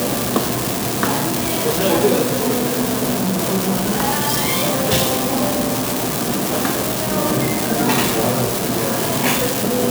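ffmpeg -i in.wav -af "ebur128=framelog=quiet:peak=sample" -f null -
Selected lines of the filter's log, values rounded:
Integrated loudness:
  I:         -17.8 LUFS
  Threshold: -27.8 LUFS
Loudness range:
  LRA:         0.7 LU
  Threshold: -37.8 LUFS
  LRA low:   -18.1 LUFS
  LRA high:  -17.4 LUFS
Sample peak:
  Peak:       -3.1 dBFS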